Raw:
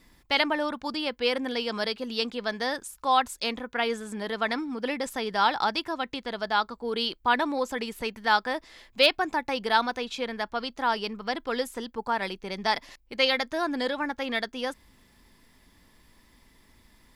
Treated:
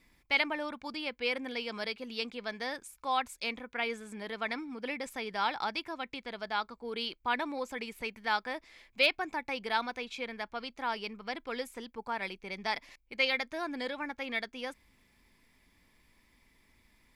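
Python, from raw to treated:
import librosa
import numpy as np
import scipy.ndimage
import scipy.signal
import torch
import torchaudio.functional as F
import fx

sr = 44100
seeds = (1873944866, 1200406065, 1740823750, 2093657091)

y = fx.peak_eq(x, sr, hz=2300.0, db=10.5, octaves=0.29)
y = y * 10.0 ** (-8.5 / 20.0)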